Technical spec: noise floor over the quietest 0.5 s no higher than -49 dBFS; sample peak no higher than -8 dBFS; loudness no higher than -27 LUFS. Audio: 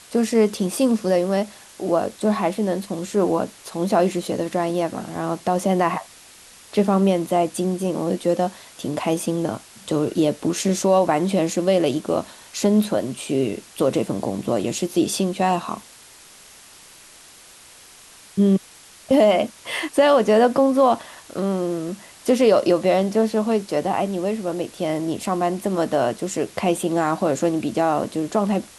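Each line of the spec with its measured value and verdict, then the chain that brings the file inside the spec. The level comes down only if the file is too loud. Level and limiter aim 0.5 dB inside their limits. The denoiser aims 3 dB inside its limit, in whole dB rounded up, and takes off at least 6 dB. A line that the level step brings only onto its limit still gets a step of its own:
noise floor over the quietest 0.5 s -47 dBFS: fail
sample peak -6.0 dBFS: fail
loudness -21.5 LUFS: fail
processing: gain -6 dB

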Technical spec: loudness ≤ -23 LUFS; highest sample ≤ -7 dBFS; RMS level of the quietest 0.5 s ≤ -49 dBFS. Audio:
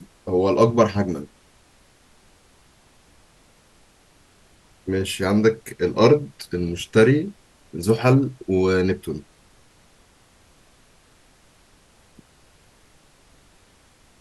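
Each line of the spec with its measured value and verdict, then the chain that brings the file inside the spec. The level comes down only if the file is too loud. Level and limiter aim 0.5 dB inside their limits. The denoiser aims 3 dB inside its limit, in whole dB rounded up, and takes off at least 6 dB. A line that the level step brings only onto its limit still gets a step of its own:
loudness -20.5 LUFS: fail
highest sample -3.0 dBFS: fail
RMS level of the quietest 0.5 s -56 dBFS: OK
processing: gain -3 dB; limiter -7.5 dBFS

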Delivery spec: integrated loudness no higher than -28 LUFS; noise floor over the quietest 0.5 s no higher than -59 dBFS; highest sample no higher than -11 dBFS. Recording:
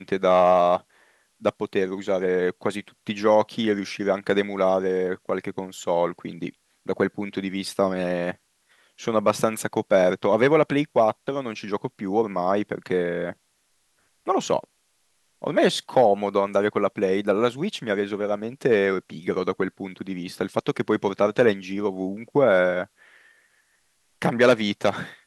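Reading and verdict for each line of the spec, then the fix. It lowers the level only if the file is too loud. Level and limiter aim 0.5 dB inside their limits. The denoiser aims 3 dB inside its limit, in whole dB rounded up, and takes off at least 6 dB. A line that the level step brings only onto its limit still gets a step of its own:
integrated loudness -23.5 LUFS: fail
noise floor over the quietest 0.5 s -68 dBFS: OK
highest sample -4.5 dBFS: fail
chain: gain -5 dB; limiter -11.5 dBFS

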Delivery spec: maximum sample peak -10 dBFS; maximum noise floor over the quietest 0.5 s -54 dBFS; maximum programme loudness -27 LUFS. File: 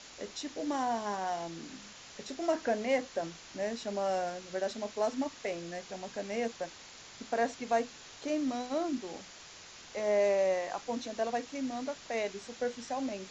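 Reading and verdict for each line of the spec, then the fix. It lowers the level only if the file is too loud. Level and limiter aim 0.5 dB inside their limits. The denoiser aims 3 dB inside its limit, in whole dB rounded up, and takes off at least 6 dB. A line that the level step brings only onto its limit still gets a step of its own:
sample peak -17.0 dBFS: OK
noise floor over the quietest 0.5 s -51 dBFS: fail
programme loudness -34.5 LUFS: OK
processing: denoiser 6 dB, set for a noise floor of -51 dBFS

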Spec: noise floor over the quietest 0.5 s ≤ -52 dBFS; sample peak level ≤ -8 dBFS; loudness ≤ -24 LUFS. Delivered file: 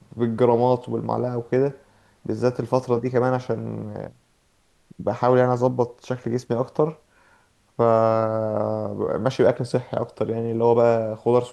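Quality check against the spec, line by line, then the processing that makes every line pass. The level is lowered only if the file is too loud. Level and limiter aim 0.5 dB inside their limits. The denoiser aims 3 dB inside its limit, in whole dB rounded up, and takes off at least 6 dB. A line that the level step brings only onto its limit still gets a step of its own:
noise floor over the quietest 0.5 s -63 dBFS: OK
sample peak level -5.0 dBFS: fail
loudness -22.5 LUFS: fail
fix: gain -2 dB; limiter -8.5 dBFS

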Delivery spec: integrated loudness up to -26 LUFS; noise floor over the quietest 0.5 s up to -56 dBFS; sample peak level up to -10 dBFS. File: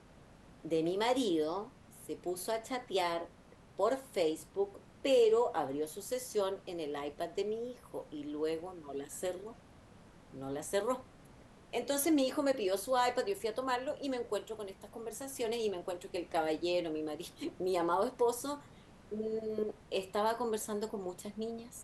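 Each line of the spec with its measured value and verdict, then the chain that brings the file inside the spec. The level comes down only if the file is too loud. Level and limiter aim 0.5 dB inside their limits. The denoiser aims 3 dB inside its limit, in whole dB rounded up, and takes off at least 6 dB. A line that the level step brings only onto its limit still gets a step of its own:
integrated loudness -35.5 LUFS: OK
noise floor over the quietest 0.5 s -59 dBFS: OK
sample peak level -18.5 dBFS: OK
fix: none

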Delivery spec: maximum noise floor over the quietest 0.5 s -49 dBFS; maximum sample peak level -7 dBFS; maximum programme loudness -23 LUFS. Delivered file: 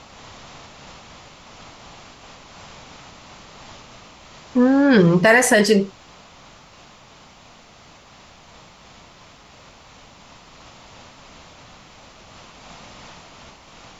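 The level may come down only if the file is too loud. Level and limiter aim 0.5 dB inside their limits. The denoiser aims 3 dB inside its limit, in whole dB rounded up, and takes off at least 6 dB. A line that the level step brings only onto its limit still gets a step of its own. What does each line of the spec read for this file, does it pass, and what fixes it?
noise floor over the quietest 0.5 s -48 dBFS: fail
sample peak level -4.5 dBFS: fail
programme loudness -15.5 LUFS: fail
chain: gain -8 dB

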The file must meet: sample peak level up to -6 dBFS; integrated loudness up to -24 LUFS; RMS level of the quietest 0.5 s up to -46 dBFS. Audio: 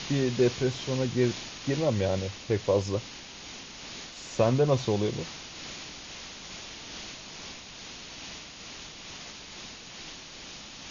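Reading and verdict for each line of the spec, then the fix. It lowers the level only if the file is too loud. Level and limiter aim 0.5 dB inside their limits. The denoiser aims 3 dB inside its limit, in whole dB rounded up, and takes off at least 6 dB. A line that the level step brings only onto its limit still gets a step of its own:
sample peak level -10.5 dBFS: OK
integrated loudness -31.0 LUFS: OK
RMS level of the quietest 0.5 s -44 dBFS: fail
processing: denoiser 6 dB, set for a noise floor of -44 dBFS

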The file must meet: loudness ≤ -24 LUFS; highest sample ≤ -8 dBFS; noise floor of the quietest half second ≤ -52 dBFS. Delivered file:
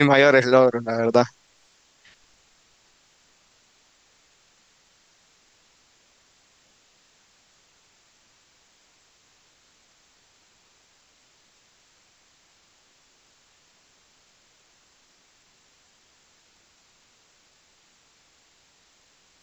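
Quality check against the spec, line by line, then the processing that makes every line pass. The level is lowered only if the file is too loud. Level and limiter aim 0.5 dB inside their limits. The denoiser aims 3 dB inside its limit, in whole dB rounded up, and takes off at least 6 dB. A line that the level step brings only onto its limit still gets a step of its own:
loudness -18.0 LUFS: fail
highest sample -3.0 dBFS: fail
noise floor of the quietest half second -61 dBFS: OK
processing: gain -6.5 dB

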